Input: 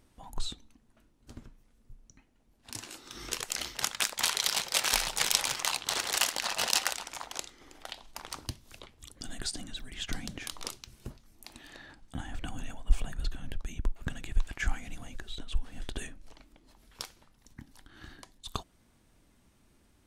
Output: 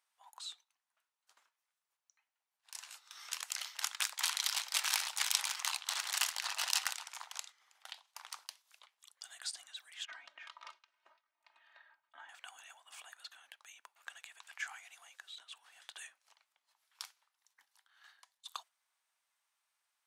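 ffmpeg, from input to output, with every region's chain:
ffmpeg -i in.wav -filter_complex "[0:a]asettb=1/sr,asplit=3[link_01][link_02][link_03];[link_01]atrim=end=10.054[link_04];[link_02]atrim=start=10.05:end=12.29,asetpts=PTS-STARTPTS,afade=type=in:duration=0.004:curve=qsin,afade=type=out:start_time=2.236:duration=0.004:curve=qsin,lowpass=2000,aecho=1:1:3.2:0.88,atrim=end_sample=98784[link_05];[link_03]atrim=start=12.286[link_06];[link_04][link_05]acrossfade=duration=0.004:curve1=hsin:curve2=qsin[link_07];[link_07][link_06]acrossfade=duration=0.004:curve1=qsin:curve2=hsin,agate=range=-6dB:threshold=-47dB:ratio=16:detection=peak,highpass=frequency=870:width=0.5412,highpass=frequency=870:width=1.3066,volume=-5.5dB" out.wav

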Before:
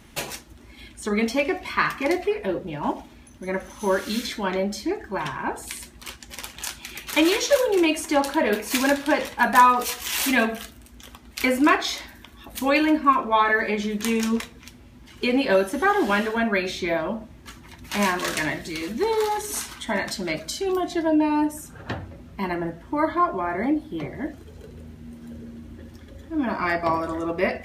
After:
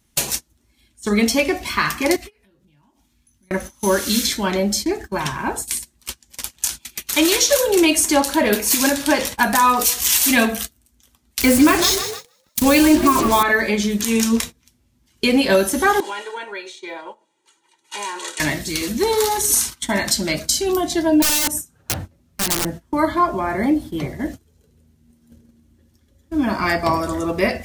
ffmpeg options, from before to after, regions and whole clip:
ffmpeg -i in.wav -filter_complex "[0:a]asettb=1/sr,asplit=3[link_01][link_02][link_03];[link_01]atrim=end=2.164[link_04];[link_02]atrim=start=2.16:end=3.51,asetpts=PTS-STARTPTS,afade=type=in:duration=0.004:curve=qsin,afade=type=out:start_time=1.346:duration=0.004:curve=qsin,equalizer=frequency=540:width_type=o:width=1.4:gain=-11,acompressor=threshold=-39dB:ratio=16:attack=3.2:release=140:knee=1:detection=peak,asplit=2[link_05][link_06];[link_06]adelay=21,volume=-10dB[link_07];[link_05][link_07]amix=inputs=2:normalize=0,atrim=end_sample=59535[link_08];[link_03]atrim=start=3.506[link_09];[link_04][link_08]acrossfade=duration=0.004:curve1=hsin:curve2=qsin[link_10];[link_10][link_09]acrossfade=duration=0.004:curve1=qsin:curve2=hsin,asettb=1/sr,asplit=3[link_11][link_12][link_13];[link_11]atrim=end=11.414[link_14];[link_12]atrim=start=11.41:end=13.43,asetpts=PTS-STARTPTS,afade=type=in:duration=0.004:curve=qsin,afade=type=out:start_time=2.016:duration=0.004:curve=qsin,acrusher=bits=4:mix=0:aa=0.5,lowshelf=frequency=310:gain=9.5,asplit=6[link_15][link_16][link_17][link_18][link_19][link_20];[link_16]adelay=154,afreqshift=44,volume=-12dB[link_21];[link_17]adelay=308,afreqshift=88,volume=-18dB[link_22];[link_18]adelay=462,afreqshift=132,volume=-24dB[link_23];[link_19]adelay=616,afreqshift=176,volume=-30.1dB[link_24];[link_20]adelay=770,afreqshift=220,volume=-36.1dB[link_25];[link_15][link_21][link_22][link_23][link_24][link_25]amix=inputs=6:normalize=0,atrim=end_sample=89082[link_26];[link_13]atrim=start=13.426[link_27];[link_14][link_26]acrossfade=duration=0.004:curve1=hsin:curve2=qsin[link_28];[link_28][link_27]acrossfade=duration=0.004:curve1=qsin:curve2=hsin,asettb=1/sr,asplit=3[link_29][link_30][link_31];[link_29]atrim=end=16.004[link_32];[link_30]atrim=start=16:end=18.4,asetpts=PTS-STARTPTS,afade=type=in:duration=0.004:curve=qsin,afade=type=out:start_time=2.396:duration=0.004:curve=qsin,aecho=1:1:2.1:0.82,atrim=end_sample=105840,acompressor=threshold=-35dB:ratio=3:attack=3.2:release=140:knee=1:detection=peak,highpass=frequency=290:width=0.5412,highpass=frequency=290:width=1.3066,equalizer=frequency=590:width_type=q:width=4:gain=-6,equalizer=frequency=840:width_type=q:width=4:gain=8,equalizer=frequency=3200:width_type=q:width=4:gain=3,equalizer=frequency=5300:width_type=q:width=4:gain=-8,lowpass=frequency=8900:width=0.5412,lowpass=frequency=8900:width=1.3066[link_33];[link_31]atrim=start=18.396[link_34];[link_32][link_33]acrossfade=duration=0.004:curve1=hsin:curve2=qsin[link_35];[link_35][link_34]acrossfade=duration=0.004:curve1=qsin:curve2=hsin,asettb=1/sr,asplit=3[link_36][link_37][link_38];[link_36]atrim=end=21.224[link_39];[link_37]atrim=start=21.22:end=22.65,asetpts=PTS-STARTPTS,afade=type=in:duration=0.004:curve=qsin,afade=type=out:start_time=1.426:duration=0.004:curve=qsin,highpass=frequency=44:poles=1,aeval=exprs='(mod(12.6*val(0)+1,2)-1)/12.6':channel_layout=same[link_40];[link_38]atrim=start=22.646[link_41];[link_39][link_40]acrossfade=duration=0.004:curve1=hsin:curve2=qsin[link_42];[link_42][link_41]acrossfade=duration=0.004:curve1=qsin:curve2=hsin,agate=range=-22dB:threshold=-35dB:ratio=16:detection=peak,bass=frequency=250:gain=5,treble=frequency=4000:gain=13,alimiter=limit=-8dB:level=0:latency=1:release=109,volume=3.5dB" out.wav

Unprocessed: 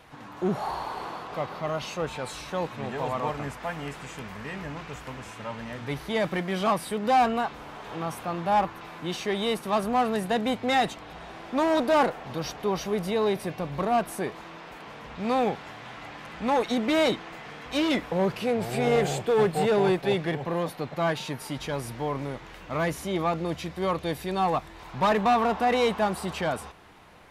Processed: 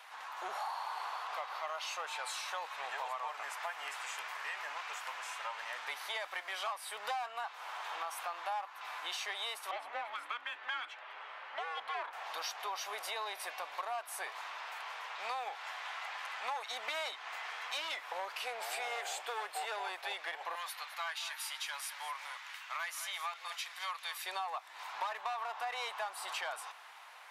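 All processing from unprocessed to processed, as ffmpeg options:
ffmpeg -i in.wav -filter_complex "[0:a]asettb=1/sr,asplit=3[link_01][link_02][link_03];[link_01]atrim=end=9.714[link_04];[link_02]atrim=start=9.71:end=12.13,asetpts=PTS-STARTPTS,afade=type=in:duration=0.004:curve=qsin,afade=type=out:start_time=2.416:duration=0.004:curve=qsin,afreqshift=-480,acrossover=split=300 3400:gain=0.0891 1 0.1[link_05][link_06][link_07];[link_05][link_06][link_07]amix=inputs=3:normalize=0[link_08];[link_03]atrim=start=12.126[link_09];[link_04][link_08]acrossfade=duration=0.004:curve1=hsin:curve2=qsin[link_10];[link_10][link_09]acrossfade=duration=0.004:curve1=qsin:curve2=hsin,asettb=1/sr,asplit=3[link_11][link_12][link_13];[link_11]atrim=end=20.554[link_14];[link_12]atrim=start=20.55:end=24.26,asetpts=PTS-STARTPTS,afade=type=in:duration=0.004:curve=qsin,afade=type=out:start_time=3.706:duration=0.004:curve=qsin,highpass=1300,aecho=1:1:212:0.2,atrim=end_sample=163611[link_15];[link_13]atrim=start=24.256[link_16];[link_14][link_15]acrossfade=duration=0.004:curve1=hsin:curve2=qsin[link_17];[link_17][link_16]acrossfade=duration=0.004:curve1=qsin:curve2=hsin,highpass=frequency=800:width=0.5412,highpass=frequency=800:width=1.3066,acompressor=threshold=-38dB:ratio=6,volume=1.5dB" out.wav

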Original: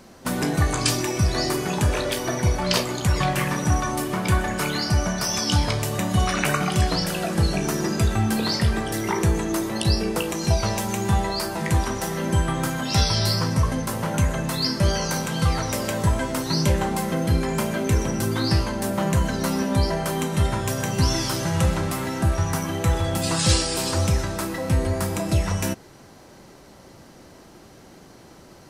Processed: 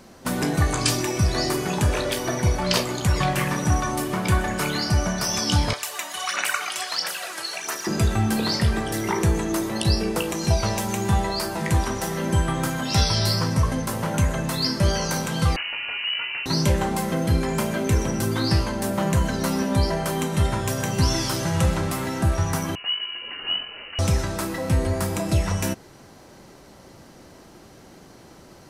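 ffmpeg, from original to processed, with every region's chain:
ffmpeg -i in.wav -filter_complex "[0:a]asettb=1/sr,asplit=3[link_01][link_02][link_03];[link_01]atrim=end=5.734[link_04];[link_02]atrim=start=5.73:end=7.87,asetpts=PTS-STARTPTS,afade=type=in:duration=0.004:curve=qsin,afade=type=out:start_time=2.136:duration=0.004:curve=qsin,highpass=1100,aphaser=in_gain=1:out_gain=1:delay=3.2:decay=0.52:speed=1.5:type=sinusoidal[link_05];[link_03]atrim=start=7.866[link_06];[link_04][link_05]acrossfade=duration=0.004:curve1=hsin:curve2=qsin[link_07];[link_07][link_06]acrossfade=duration=0.004:curve1=qsin:curve2=hsin,asettb=1/sr,asplit=3[link_08][link_09][link_10];[link_08]atrim=end=15.564[link_11];[link_09]atrim=start=15.56:end=16.46,asetpts=PTS-STARTPTS,afade=type=in:duration=0.004:curve=qsin,afade=type=out:start_time=0.896:duration=0.004:curve=qsin,aeval=exprs='(tanh(15.8*val(0)+0.45)-tanh(0.45))/15.8':channel_layout=same,lowpass=frequency=2600:width_type=q:width=0.5098,lowpass=frequency=2600:width_type=q:width=0.6013,lowpass=frequency=2600:width_type=q:width=0.9,lowpass=frequency=2600:width_type=q:width=2.563,afreqshift=-3000[link_12];[link_10]atrim=start=16.456[link_13];[link_11][link_12]acrossfade=duration=0.004:curve1=hsin:curve2=qsin[link_14];[link_14][link_13]acrossfade=duration=0.004:curve1=qsin:curve2=hsin,asettb=1/sr,asplit=3[link_15][link_16][link_17];[link_15]atrim=end=22.754[link_18];[link_16]atrim=start=22.75:end=23.99,asetpts=PTS-STARTPTS,afade=type=in:duration=0.004:curve=qsin,afade=type=out:start_time=1.236:duration=0.004:curve=qsin,equalizer=frequency=460:width_type=o:width=2.6:gain=-14.5,aeval=exprs='(tanh(5.01*val(0)+0.7)-tanh(0.7))/5.01':channel_layout=same,lowpass=frequency=2600:width_type=q:width=0.5098,lowpass=frequency=2600:width_type=q:width=0.6013,lowpass=frequency=2600:width_type=q:width=0.9,lowpass=frequency=2600:width_type=q:width=2.563,afreqshift=-3000[link_19];[link_17]atrim=start=23.986[link_20];[link_18][link_19]acrossfade=duration=0.004:curve1=hsin:curve2=qsin[link_21];[link_21][link_20]acrossfade=duration=0.004:curve1=qsin:curve2=hsin" out.wav

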